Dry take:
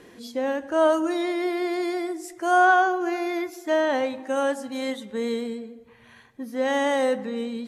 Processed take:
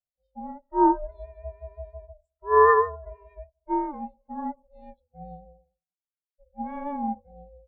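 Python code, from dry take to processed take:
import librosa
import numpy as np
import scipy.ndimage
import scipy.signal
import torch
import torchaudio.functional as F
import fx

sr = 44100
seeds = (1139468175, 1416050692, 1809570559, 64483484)

y = fx.hum_notches(x, sr, base_hz=50, count=10)
y = y * np.sin(2.0 * np.pi * 290.0 * np.arange(len(y)) / sr)
y = fx.spectral_expand(y, sr, expansion=2.5)
y = y * librosa.db_to_amplitude(2.5)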